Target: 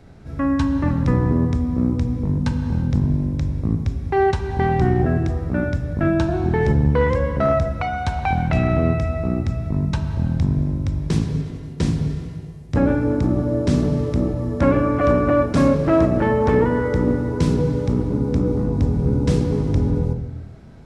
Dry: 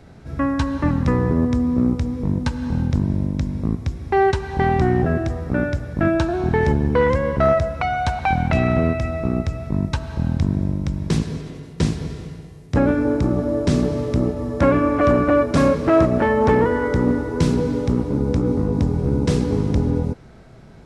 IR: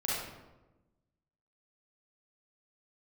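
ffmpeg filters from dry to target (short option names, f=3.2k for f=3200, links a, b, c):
-filter_complex "[0:a]asplit=2[a][b];[1:a]atrim=start_sample=2205,asetrate=52920,aresample=44100,lowshelf=f=420:g=11.5[c];[b][c]afir=irnorm=-1:irlink=0,volume=-14.5dB[d];[a][d]amix=inputs=2:normalize=0,volume=-4dB"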